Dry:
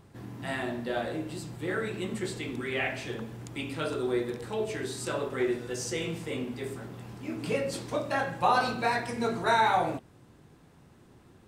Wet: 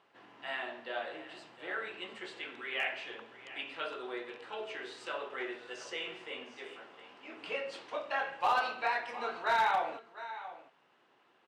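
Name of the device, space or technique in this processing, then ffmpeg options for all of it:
megaphone: -filter_complex "[0:a]asettb=1/sr,asplit=3[s0][s1][s2];[s0]atrim=end=6.574[s3];[s1]atrim=start=6.57:end=7.37,asetpts=PTS-STARTPTS,afade=t=in:d=0.004:c=qsin,afade=t=out:st=0.796:d=0.004:c=qsin,highpass=160[s4];[s2]atrim=start=7.366[s5];[s3][s4]acrossfade=d=0.004:c1=hsin:c2=qsin[s6];[s6][s5]acrossfade=d=0.004:c1=qsin:c2=hsin,highpass=690,lowpass=3200,equalizer=f=2900:t=o:w=0.24:g=7,aecho=1:1:708:0.178,asoftclip=type=hard:threshold=0.1,volume=0.75"

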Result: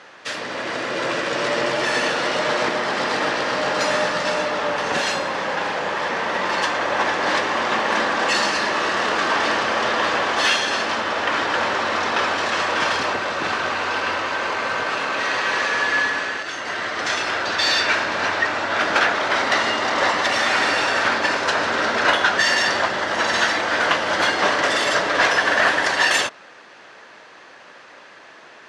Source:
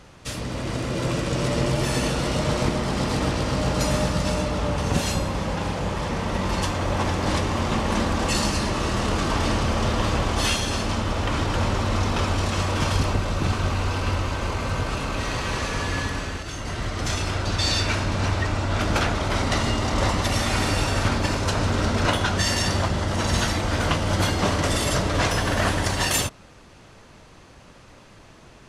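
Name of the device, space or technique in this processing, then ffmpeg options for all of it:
intercom: -af "highpass=470,lowpass=4900,equalizer=f=1700:t=o:w=0.41:g=7.5,asoftclip=type=tanh:threshold=0.237,volume=2.11"

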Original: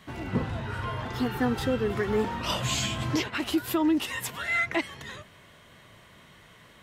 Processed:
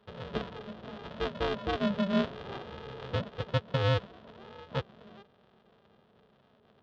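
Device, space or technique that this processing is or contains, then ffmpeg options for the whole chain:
ring modulator pedal into a guitar cabinet: -af "afftfilt=real='re*between(b*sr/4096,210,810)':imag='im*between(b*sr/4096,210,810)':win_size=4096:overlap=0.75,aeval=exprs='val(0)*sgn(sin(2*PI*200*n/s))':c=same,highpass=88,equalizer=f=210:t=q:w=4:g=6,equalizer=f=300:t=q:w=4:g=-10,equalizer=f=520:t=q:w=4:g=-4,equalizer=f=840:t=q:w=4:g=-9,equalizer=f=2200:t=q:w=4:g=-6,equalizer=f=3400:t=q:w=4:g=5,lowpass=f=3900:w=0.5412,lowpass=f=3900:w=1.3066"

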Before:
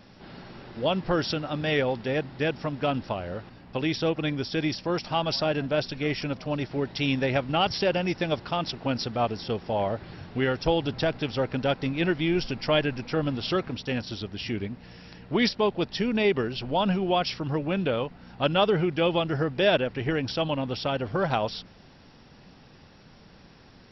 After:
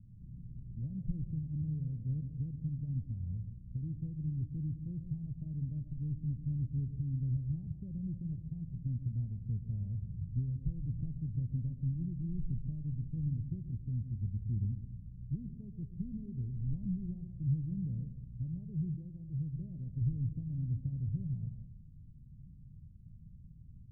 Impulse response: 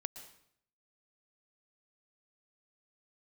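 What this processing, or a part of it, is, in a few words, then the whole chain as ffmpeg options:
club heard from the street: -filter_complex "[0:a]alimiter=limit=0.1:level=0:latency=1:release=348,lowpass=f=140:w=0.5412,lowpass=f=140:w=1.3066[s0];[1:a]atrim=start_sample=2205[s1];[s0][s1]afir=irnorm=-1:irlink=0,asettb=1/sr,asplit=3[s2][s3][s4];[s2]atrim=end=18.954[s5];[s3]atrim=start=18.95:end=19.53,asetpts=PTS-STARTPTS,afade=t=in:d=0.004:c=qsin,afade=t=out:st=0.576:d=0.004:c=qsin,lowshelf=f=480:g=-4.5[s6];[s4]atrim=start=19.526[s7];[s5][s6]acrossfade=d=0.004:c1=hsin:c2=qsin[s8];[s8][s7]acrossfade=d=0.004:c1=qsin:c2=hsin,volume=2.24"

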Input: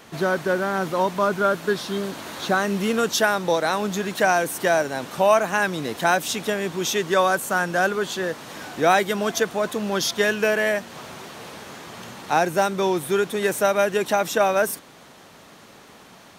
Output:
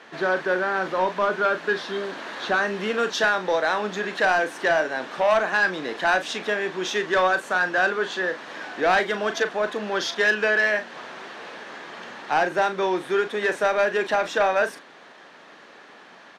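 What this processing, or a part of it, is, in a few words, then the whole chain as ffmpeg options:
intercom: -filter_complex "[0:a]highpass=310,lowpass=4000,equalizer=f=1700:t=o:w=0.31:g=7,asoftclip=type=tanh:threshold=0.211,asplit=2[s0][s1];[s1]adelay=38,volume=0.316[s2];[s0][s2]amix=inputs=2:normalize=0"

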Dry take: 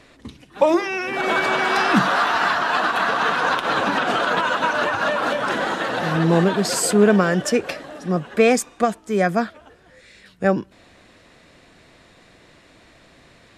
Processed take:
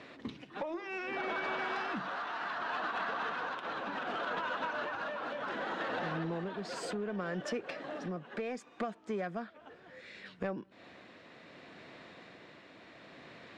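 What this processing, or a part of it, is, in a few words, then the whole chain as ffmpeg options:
AM radio: -filter_complex "[0:a]highpass=160,lowpass=3700,acompressor=threshold=0.0224:ratio=6,asoftclip=type=tanh:threshold=0.0501,tremolo=f=0.67:d=0.32,asettb=1/sr,asplit=3[s0][s1][s2];[s0]atrim=end=1.154[s3];[s1]atrim=start=1.15:end=1.56,asetpts=PTS-STARTPTS,afade=t=in:d=0.004:c=qsin,afade=t=out:st=0.406:d=0.004:c=qsin,lowpass=7700[s4];[s2]atrim=start=1.556[s5];[s3][s4]acrossfade=d=0.004:c1=hsin:c2=qsin[s6];[s6][s5]acrossfade=d=0.004:c1=qsin:c2=hsin"

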